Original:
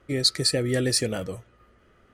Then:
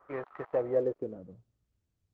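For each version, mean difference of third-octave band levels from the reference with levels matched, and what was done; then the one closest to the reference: 14.0 dB: switching dead time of 0.13 ms; three-band isolator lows -20 dB, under 500 Hz, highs -12 dB, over 3700 Hz; low-pass sweep 1100 Hz -> 100 Hz, 0.41–1.66; Opus 12 kbps 48000 Hz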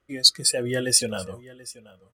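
7.0 dB: de-hum 155 Hz, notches 4; spectral noise reduction 15 dB; high shelf 2800 Hz +8 dB; on a send: echo 0.732 s -20 dB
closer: second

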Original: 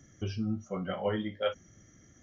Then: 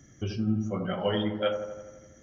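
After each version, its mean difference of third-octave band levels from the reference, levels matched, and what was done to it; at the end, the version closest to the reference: 4.0 dB: spectral gain 1–1.24, 2500–5900 Hz +9 dB; on a send: dark delay 84 ms, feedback 63%, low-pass 1100 Hz, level -5.5 dB; on the sum: gain +2.5 dB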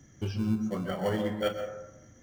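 7.5 dB: in parallel at -10.5 dB: sample-and-hold 35×; on the sum: plate-style reverb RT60 0.97 s, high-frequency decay 0.3×, pre-delay 0.11 s, DRR 6 dB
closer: first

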